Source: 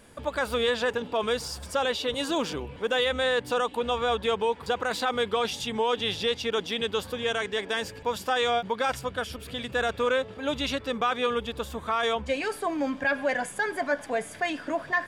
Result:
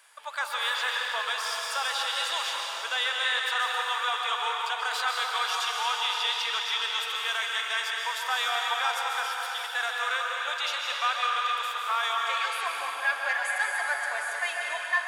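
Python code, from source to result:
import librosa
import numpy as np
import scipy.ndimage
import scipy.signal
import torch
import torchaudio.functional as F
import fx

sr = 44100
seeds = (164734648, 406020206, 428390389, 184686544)

y = scipy.signal.sosfilt(scipy.signal.butter(4, 900.0, 'highpass', fs=sr, output='sos'), x)
y = fx.rev_plate(y, sr, seeds[0], rt60_s=3.9, hf_ratio=0.85, predelay_ms=115, drr_db=-1.5)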